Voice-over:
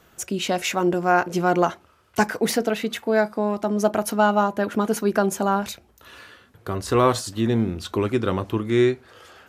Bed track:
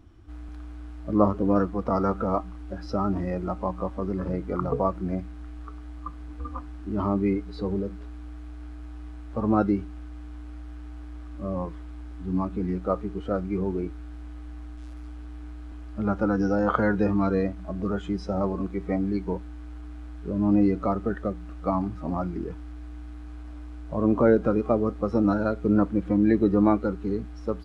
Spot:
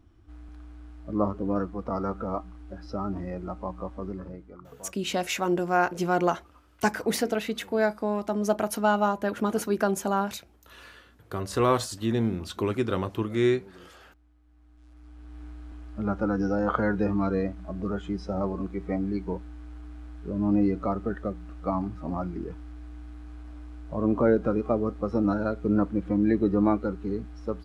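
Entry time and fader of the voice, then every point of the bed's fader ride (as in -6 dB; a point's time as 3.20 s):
4.65 s, -4.5 dB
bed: 4.09 s -5.5 dB
4.69 s -22.5 dB
14.43 s -22.5 dB
15.41 s -2.5 dB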